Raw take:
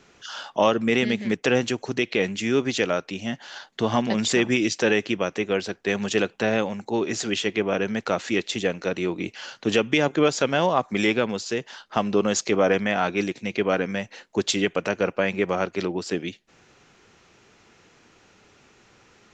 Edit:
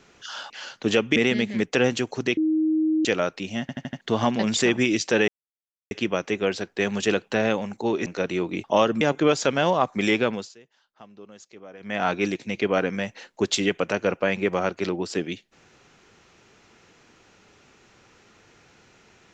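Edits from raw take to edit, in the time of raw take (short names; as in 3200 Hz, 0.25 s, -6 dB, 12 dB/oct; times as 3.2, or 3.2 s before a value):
0.5–0.87 swap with 9.31–9.97
2.08–2.76 bleep 314 Hz -18.5 dBFS
3.32 stutter in place 0.08 s, 5 plays
4.99 insert silence 0.63 s
7.14–8.73 cut
11.26–13.01 dip -24 dB, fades 0.25 s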